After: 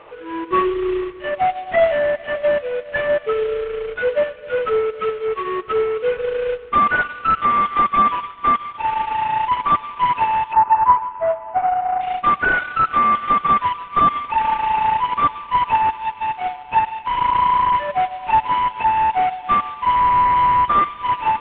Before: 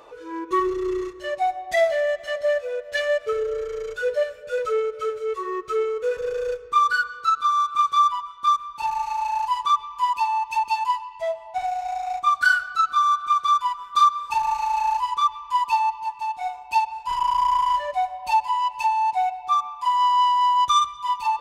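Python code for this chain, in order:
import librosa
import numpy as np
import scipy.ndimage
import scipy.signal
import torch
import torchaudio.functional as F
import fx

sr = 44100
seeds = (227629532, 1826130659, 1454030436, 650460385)

y = fx.cvsd(x, sr, bps=16000)
y = fx.lowpass_res(y, sr, hz=1200.0, q=2.0, at=(10.53, 12.01))
y = y * librosa.db_to_amplitude(5.0)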